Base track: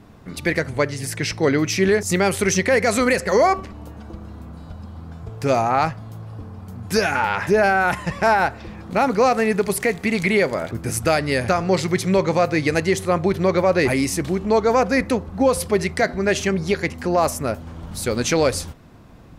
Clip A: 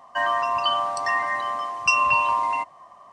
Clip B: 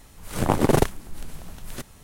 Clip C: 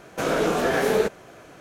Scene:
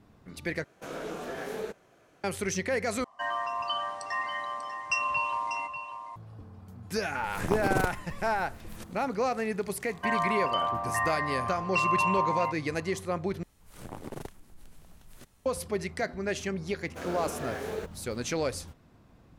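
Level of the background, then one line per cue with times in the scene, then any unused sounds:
base track −12 dB
0:00.64: overwrite with C −15 dB
0:03.04: overwrite with A −9 dB + single-tap delay 592 ms −10 dB
0:07.02: mix in B −9.5 dB + pitch modulation by a square or saw wave square 6.6 Hz, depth 160 cents
0:09.88: mix in A −5.5 dB + low-pass filter 2,600 Hz
0:13.43: overwrite with B −14.5 dB + downward compressor 1.5 to 1, threshold −32 dBFS
0:16.78: mix in C −14.5 dB + hold until the input has moved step −42.5 dBFS

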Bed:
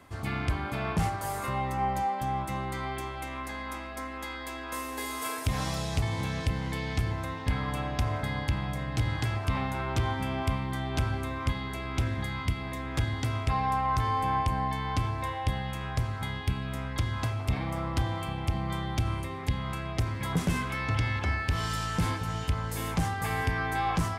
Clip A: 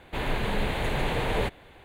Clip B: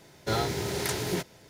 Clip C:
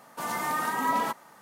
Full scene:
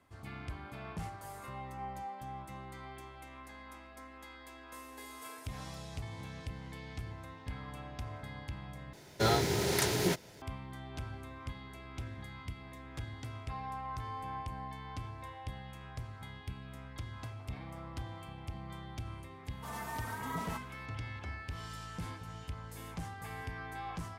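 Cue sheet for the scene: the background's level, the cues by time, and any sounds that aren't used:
bed −13.5 dB
0:08.93: overwrite with B
0:19.45: mix in C −14.5 dB + comb filter 4.5 ms, depth 95%
not used: A

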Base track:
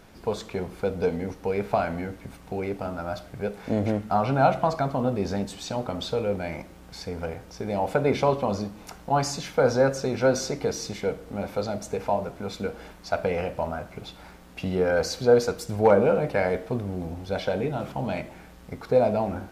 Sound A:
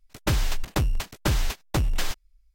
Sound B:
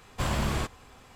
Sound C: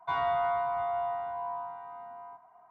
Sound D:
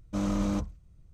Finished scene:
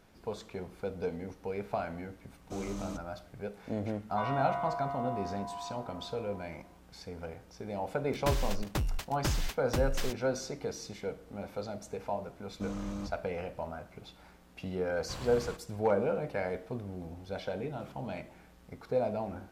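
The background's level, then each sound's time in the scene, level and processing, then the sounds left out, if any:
base track −10 dB
0:02.37: mix in D −11.5 dB + high-shelf EQ 3,700 Hz +10.5 dB
0:04.09: mix in C −6 dB
0:07.99: mix in A −8 dB
0:12.47: mix in D −9.5 dB
0:14.90: mix in B −14 dB

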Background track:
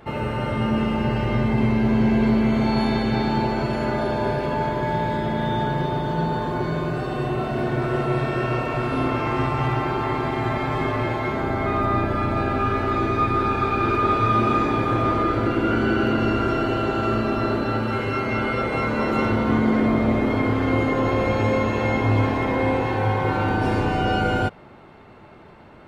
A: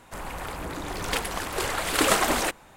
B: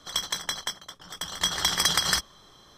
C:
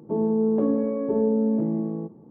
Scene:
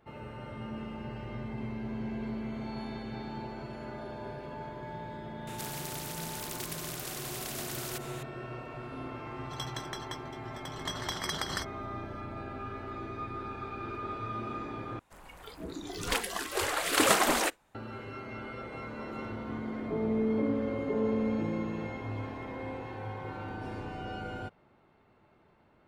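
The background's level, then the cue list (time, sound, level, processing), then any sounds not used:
background track −18 dB
0:05.47: mix in A −14 dB + every bin compressed towards the loudest bin 10 to 1
0:09.44: mix in B −6 dB + high-shelf EQ 2,600 Hz −10.5 dB
0:14.99: overwrite with A −2.5 dB + noise reduction from a noise print of the clip's start 14 dB
0:19.80: mix in C −8 dB + low-pass filter 1,000 Hz

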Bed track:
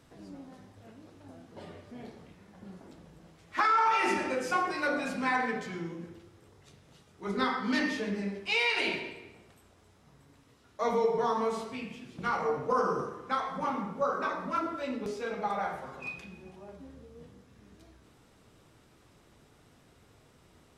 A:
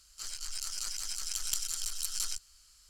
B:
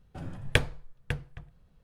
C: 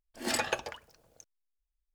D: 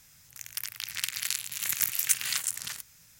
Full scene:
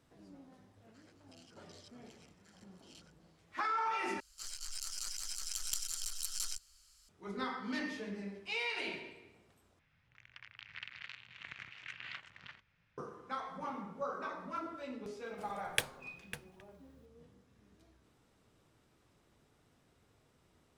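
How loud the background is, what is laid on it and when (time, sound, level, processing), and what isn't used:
bed track −9.5 dB
0:00.75: mix in A −10 dB + band-pass on a step sequencer 5.3 Hz 680–3,600 Hz
0:04.20: overwrite with A −4.5 dB
0:09.79: overwrite with D −9 dB + low-pass filter 2,900 Hz 24 dB per octave
0:15.23: mix in B −10.5 dB + RIAA equalisation recording
not used: C

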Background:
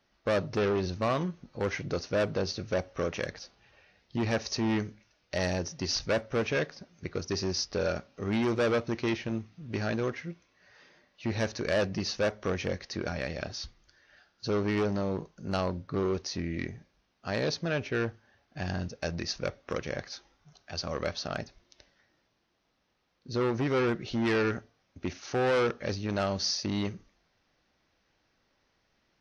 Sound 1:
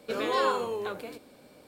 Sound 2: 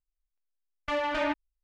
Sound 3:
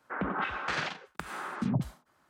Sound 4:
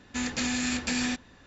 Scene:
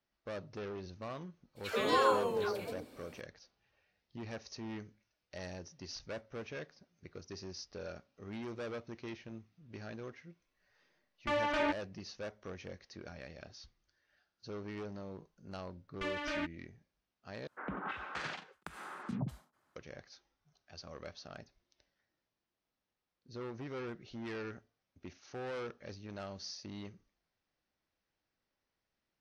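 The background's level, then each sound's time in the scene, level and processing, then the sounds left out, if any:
background −15 dB
0:01.55: mix in 1 −2 dB, fades 0.02 s + all-pass dispersion lows, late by 135 ms, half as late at 770 Hz
0:10.39: mix in 2 −3.5 dB
0:15.13: mix in 2 −5.5 dB + parametric band 800 Hz −12 dB 0.75 octaves
0:17.47: overwrite with 3 −8.5 dB + downsampling to 32,000 Hz
not used: 4

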